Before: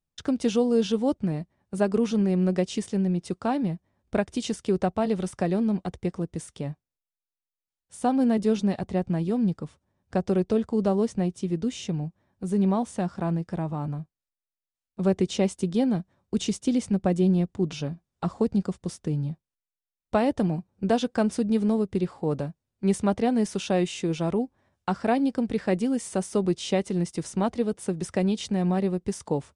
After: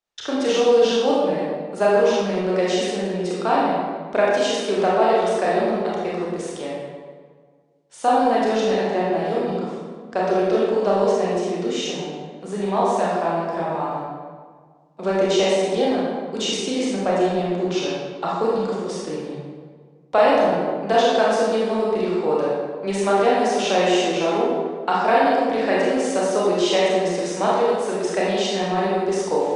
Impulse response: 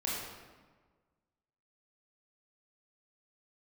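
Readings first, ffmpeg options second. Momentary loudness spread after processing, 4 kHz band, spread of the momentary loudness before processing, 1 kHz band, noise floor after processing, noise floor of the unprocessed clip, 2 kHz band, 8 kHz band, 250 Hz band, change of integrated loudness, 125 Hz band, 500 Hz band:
10 LU, +11.0 dB, 10 LU, +12.5 dB, -49 dBFS, under -85 dBFS, +12.0 dB, +6.5 dB, -0.5 dB, +6.0 dB, -4.5 dB, +9.5 dB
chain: -filter_complex "[1:a]atrim=start_sample=2205,asetrate=36603,aresample=44100[s0];[0:a][s0]afir=irnorm=-1:irlink=0,apsyclip=3.76,acrossover=split=390 7400:gain=0.0708 1 0.126[s1][s2][s3];[s1][s2][s3]amix=inputs=3:normalize=0,volume=0.562"

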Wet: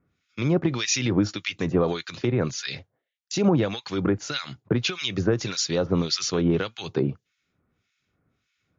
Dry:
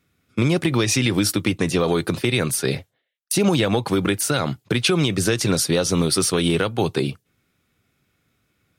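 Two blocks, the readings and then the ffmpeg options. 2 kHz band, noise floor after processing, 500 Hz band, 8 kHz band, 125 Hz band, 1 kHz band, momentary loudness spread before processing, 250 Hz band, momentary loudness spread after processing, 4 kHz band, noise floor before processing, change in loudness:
-6.5 dB, -78 dBFS, -4.0 dB, -7.5 dB, -4.5 dB, -6.5 dB, 5 LU, -4.0 dB, 9 LU, -4.5 dB, -72 dBFS, -4.5 dB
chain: -filter_complex "[0:a]acrossover=split=1500[s0][s1];[s0]aeval=exprs='val(0)*(1-1/2+1/2*cos(2*PI*1.7*n/s))':c=same[s2];[s1]aeval=exprs='val(0)*(1-1/2-1/2*cos(2*PI*1.7*n/s))':c=same[s3];[s2][s3]amix=inputs=2:normalize=0" -ar 16000 -c:a libmp3lame -b:a 80k

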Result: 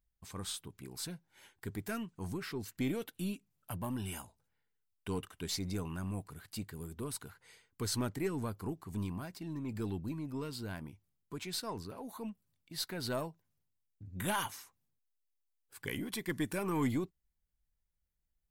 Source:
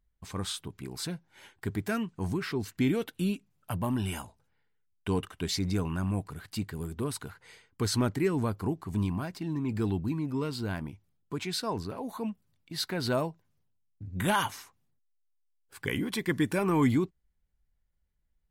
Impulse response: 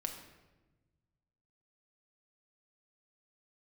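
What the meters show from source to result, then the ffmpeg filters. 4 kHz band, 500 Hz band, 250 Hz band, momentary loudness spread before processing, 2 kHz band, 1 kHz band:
-6.0 dB, -8.0 dB, -8.0 dB, 12 LU, -7.5 dB, -8.0 dB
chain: -af "crystalizer=i=1:c=0,aeval=exprs='0.211*(cos(1*acos(clip(val(0)/0.211,-1,1)))-cos(1*PI/2))+0.0075*(cos(6*acos(clip(val(0)/0.211,-1,1)))-cos(6*PI/2))':c=same,volume=0.398"

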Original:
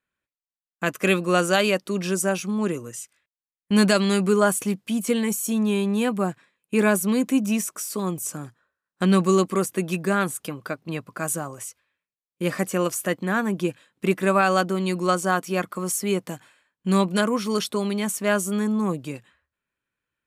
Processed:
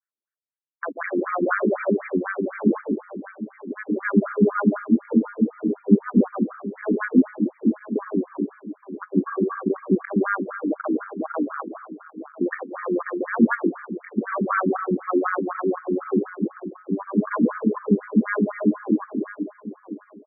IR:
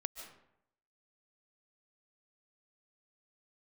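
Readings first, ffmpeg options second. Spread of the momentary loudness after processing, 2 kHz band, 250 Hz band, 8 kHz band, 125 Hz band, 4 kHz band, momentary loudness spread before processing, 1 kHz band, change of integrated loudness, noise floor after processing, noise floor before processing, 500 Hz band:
14 LU, -2.5 dB, +2.0 dB, under -40 dB, -2.5 dB, under -40 dB, 12 LU, -2.5 dB, -0.5 dB, -58 dBFS, under -85 dBFS, -1.5 dB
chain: -filter_complex "[0:a]highpass=f=130:w=0.5412,highpass=f=130:w=1.3066,afwtdn=0.0355,asubboost=boost=11:cutoff=170,acompressor=threshold=0.178:ratio=6,alimiter=limit=0.158:level=0:latency=1:release=20,dynaudnorm=f=760:g=3:m=1.41,tremolo=f=94:d=0.519,aecho=1:1:840|1680|2520:0.2|0.0539|0.0145,asplit=2[s0][s1];[1:a]atrim=start_sample=2205,lowshelf=f=390:g=-5.5,adelay=141[s2];[s1][s2]afir=irnorm=-1:irlink=0,volume=1.5[s3];[s0][s3]amix=inputs=2:normalize=0,afftfilt=real='re*between(b*sr/1024,290*pow(1700/290,0.5+0.5*sin(2*PI*4*pts/sr))/1.41,290*pow(1700/290,0.5+0.5*sin(2*PI*4*pts/sr))*1.41)':imag='im*between(b*sr/1024,290*pow(1700/290,0.5+0.5*sin(2*PI*4*pts/sr))/1.41,290*pow(1700/290,0.5+0.5*sin(2*PI*4*pts/sr))*1.41)':win_size=1024:overlap=0.75,volume=2.66"

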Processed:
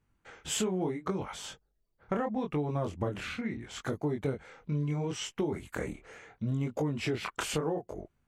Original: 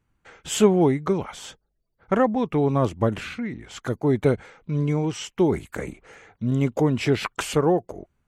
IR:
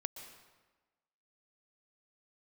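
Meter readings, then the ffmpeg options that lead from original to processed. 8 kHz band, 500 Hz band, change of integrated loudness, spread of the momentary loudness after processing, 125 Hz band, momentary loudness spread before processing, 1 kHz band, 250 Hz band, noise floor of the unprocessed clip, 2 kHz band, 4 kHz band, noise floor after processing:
-5.0 dB, -12.0 dB, -10.5 dB, 9 LU, -9.0 dB, 14 LU, -10.5 dB, -10.5 dB, -73 dBFS, -7.0 dB, -5.0 dB, -76 dBFS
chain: -af "flanger=delay=20:depth=7.3:speed=0.74,acompressor=threshold=0.0355:ratio=5"

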